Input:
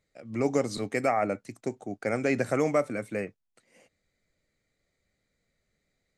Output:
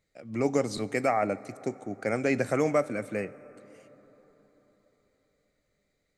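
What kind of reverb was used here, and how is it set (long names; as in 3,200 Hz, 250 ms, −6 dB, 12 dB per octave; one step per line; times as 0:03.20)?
dense smooth reverb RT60 4.5 s, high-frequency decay 0.45×, DRR 18 dB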